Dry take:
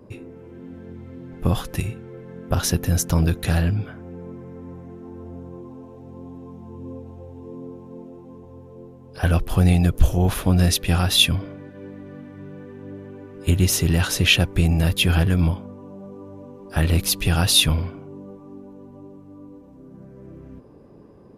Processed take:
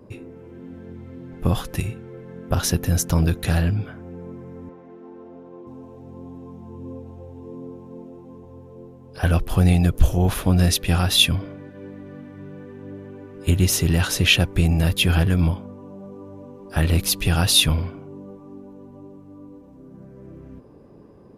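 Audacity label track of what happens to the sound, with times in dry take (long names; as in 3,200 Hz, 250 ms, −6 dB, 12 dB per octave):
4.690000	5.670000	band-pass filter 300–3,900 Hz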